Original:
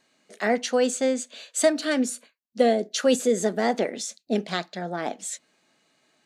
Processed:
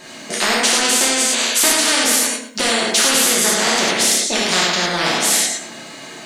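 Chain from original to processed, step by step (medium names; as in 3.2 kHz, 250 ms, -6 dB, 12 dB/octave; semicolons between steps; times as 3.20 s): in parallel at -0.5 dB: compression, threshold -28 dBFS, peak gain reduction 13.5 dB; on the sum: tape echo 111 ms, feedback 28%, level -10 dB, low-pass 5.1 kHz; gated-style reverb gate 130 ms flat, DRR -6 dB; spectrum-flattening compressor 4:1; trim -2.5 dB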